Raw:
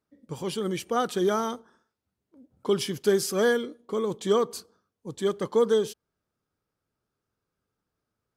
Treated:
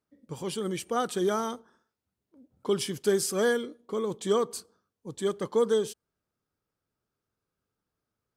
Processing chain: dynamic EQ 8500 Hz, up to +7 dB, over -56 dBFS, Q 2.5; gain -2.5 dB

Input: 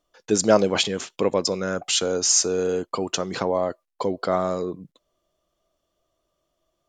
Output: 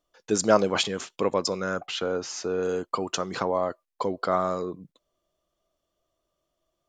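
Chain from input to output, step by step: 1.86–2.63 LPF 2900 Hz 12 dB/oct; dynamic EQ 1200 Hz, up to +6 dB, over -40 dBFS, Q 1.6; gain -4 dB

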